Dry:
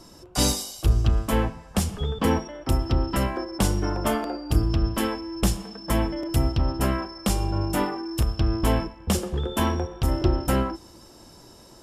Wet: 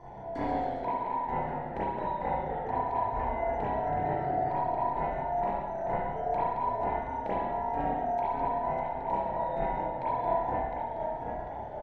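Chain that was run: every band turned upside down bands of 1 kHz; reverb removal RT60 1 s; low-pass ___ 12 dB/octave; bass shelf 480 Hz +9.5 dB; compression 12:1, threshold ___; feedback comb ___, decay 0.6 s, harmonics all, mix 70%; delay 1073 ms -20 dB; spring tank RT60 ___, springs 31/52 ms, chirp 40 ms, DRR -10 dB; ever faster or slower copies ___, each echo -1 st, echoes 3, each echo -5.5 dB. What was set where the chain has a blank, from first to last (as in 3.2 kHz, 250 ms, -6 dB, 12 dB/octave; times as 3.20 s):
1.7 kHz, -31 dBFS, 67 Hz, 1.1 s, 113 ms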